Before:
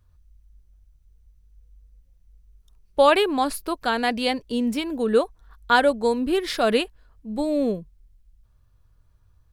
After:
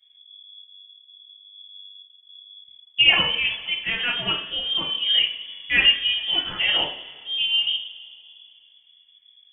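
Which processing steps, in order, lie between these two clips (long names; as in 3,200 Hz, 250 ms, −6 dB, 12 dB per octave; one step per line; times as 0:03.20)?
coupled-rooms reverb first 0.42 s, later 2.5 s, from −20 dB, DRR −5 dB
voice inversion scrambler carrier 3,400 Hz
level −6.5 dB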